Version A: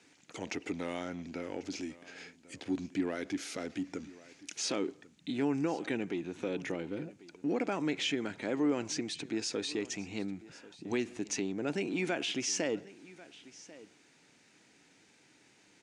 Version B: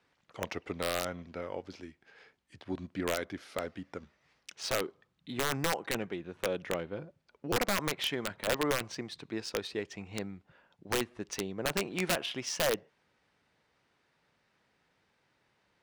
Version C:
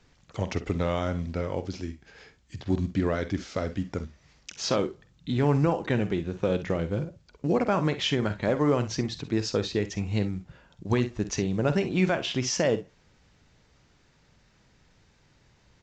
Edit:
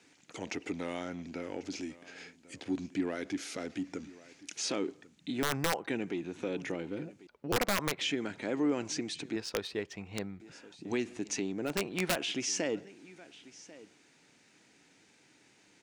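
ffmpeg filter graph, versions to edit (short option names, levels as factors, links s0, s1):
-filter_complex "[1:a]asplit=4[s0][s1][s2][s3];[0:a]asplit=5[s4][s5][s6][s7][s8];[s4]atrim=end=5.432[s9];[s0]atrim=start=5.428:end=5.882[s10];[s5]atrim=start=5.878:end=7.272[s11];[s1]atrim=start=7.268:end=8.012[s12];[s6]atrim=start=8.008:end=9.362[s13];[s2]atrim=start=9.358:end=10.402[s14];[s7]atrim=start=10.398:end=11.81[s15];[s3]atrim=start=11.65:end=12.26[s16];[s8]atrim=start=12.1[s17];[s9][s10]acrossfade=d=0.004:c1=hsin:c2=hsin[s18];[s18][s11]acrossfade=d=0.004:c1=hsin:c2=hsin[s19];[s19][s12]acrossfade=d=0.004:c1=hsin:c2=hsin[s20];[s20][s13]acrossfade=d=0.004:c1=hsin:c2=hsin[s21];[s21][s14]acrossfade=d=0.004:c1=hsin:c2=hsin[s22];[s22][s15]acrossfade=d=0.004:c1=hsin:c2=hsin[s23];[s23][s16]acrossfade=d=0.16:c1=tri:c2=tri[s24];[s24][s17]acrossfade=d=0.16:c1=tri:c2=tri"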